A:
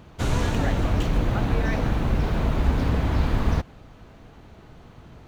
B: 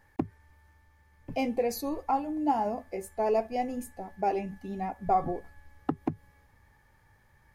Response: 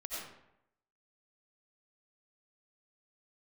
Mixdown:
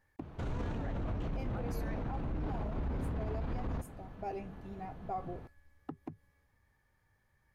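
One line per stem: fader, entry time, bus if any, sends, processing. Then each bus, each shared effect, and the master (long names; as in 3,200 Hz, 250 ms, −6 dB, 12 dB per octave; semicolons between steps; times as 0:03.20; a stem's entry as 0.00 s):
−2.0 dB, 0.20 s, no send, low-pass filter 1,200 Hz 6 dB per octave; brickwall limiter −21.5 dBFS, peak gain reduction 11 dB
−10.5 dB, 0.00 s, no send, notch filter 860 Hz, Q 12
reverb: not used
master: brickwall limiter −29.5 dBFS, peak gain reduction 9 dB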